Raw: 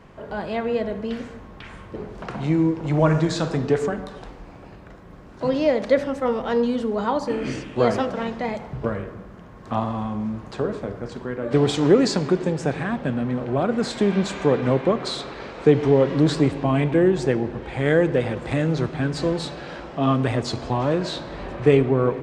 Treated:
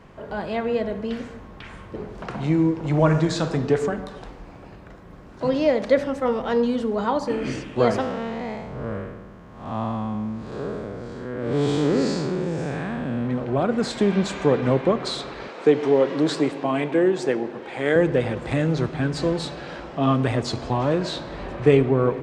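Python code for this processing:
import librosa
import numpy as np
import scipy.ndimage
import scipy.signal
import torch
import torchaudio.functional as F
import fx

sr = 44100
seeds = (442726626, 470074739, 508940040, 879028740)

y = fx.spec_blur(x, sr, span_ms=198.0, at=(8.0, 13.26), fade=0.02)
y = fx.highpass(y, sr, hz=270.0, slope=12, at=(15.48, 17.96))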